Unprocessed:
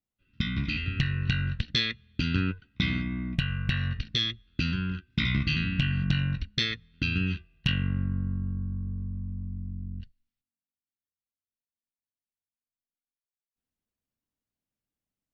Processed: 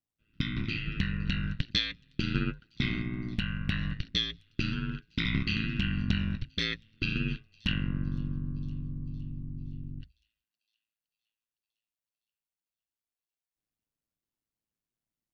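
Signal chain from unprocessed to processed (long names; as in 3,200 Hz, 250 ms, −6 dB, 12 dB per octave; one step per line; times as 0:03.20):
delay with a high-pass on its return 512 ms, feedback 61%, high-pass 5,500 Hz, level −18 dB
ring modulation 55 Hz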